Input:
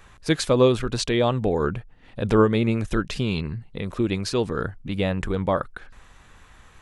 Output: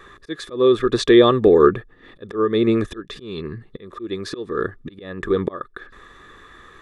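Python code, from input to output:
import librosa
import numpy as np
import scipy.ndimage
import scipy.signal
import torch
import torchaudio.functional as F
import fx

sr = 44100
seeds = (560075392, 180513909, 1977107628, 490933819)

y = fx.auto_swell(x, sr, attack_ms=478.0)
y = fx.small_body(y, sr, hz=(380.0, 1200.0, 1700.0, 3500.0), ring_ms=20, db=18)
y = F.gain(torch.from_numpy(y), -3.0).numpy()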